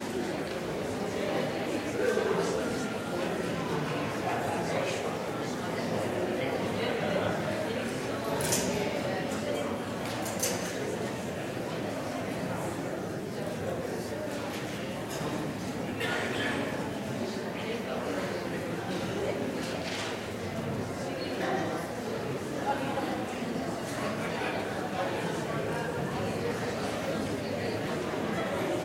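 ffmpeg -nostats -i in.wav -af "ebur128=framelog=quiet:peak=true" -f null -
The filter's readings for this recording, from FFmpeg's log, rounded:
Integrated loudness:
  I:         -32.4 LUFS
  Threshold: -42.4 LUFS
Loudness range:
  LRA:         3.6 LU
  Threshold: -52.5 LUFS
  LRA low:   -34.4 LUFS
  LRA high:  -30.8 LUFS
True peak:
  Peak:      -11.0 dBFS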